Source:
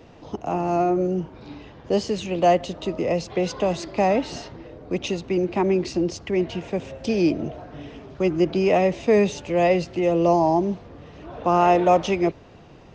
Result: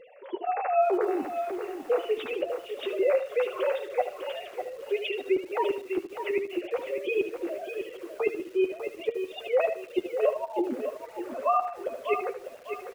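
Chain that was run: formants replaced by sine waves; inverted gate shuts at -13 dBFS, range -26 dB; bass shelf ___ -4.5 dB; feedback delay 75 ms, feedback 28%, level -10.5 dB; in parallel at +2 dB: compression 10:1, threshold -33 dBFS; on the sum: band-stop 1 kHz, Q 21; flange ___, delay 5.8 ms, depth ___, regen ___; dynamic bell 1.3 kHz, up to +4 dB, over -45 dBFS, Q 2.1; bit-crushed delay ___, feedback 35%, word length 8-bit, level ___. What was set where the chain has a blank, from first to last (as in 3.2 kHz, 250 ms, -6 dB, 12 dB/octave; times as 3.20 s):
380 Hz, 0.54 Hz, 6.6 ms, -27%, 600 ms, -8 dB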